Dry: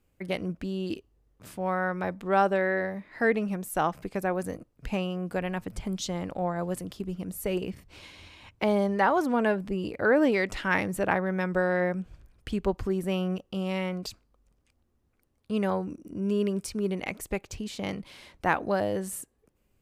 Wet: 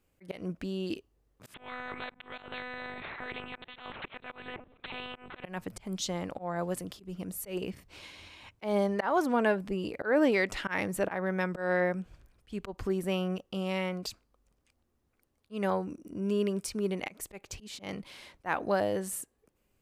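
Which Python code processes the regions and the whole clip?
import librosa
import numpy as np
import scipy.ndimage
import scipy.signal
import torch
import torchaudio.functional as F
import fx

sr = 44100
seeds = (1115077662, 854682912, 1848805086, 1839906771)

y = fx.chain(x, sr, fx.level_steps(step_db=20),
    fx.lpc_monotone(seeds[0], pitch_hz=250.0, order=10),
    fx.spectral_comp(ratio=4.0), at=(1.54, 5.44))
y = fx.low_shelf(y, sr, hz=250.0, db=-5.5)
y = fx.auto_swell(y, sr, attack_ms=156.0)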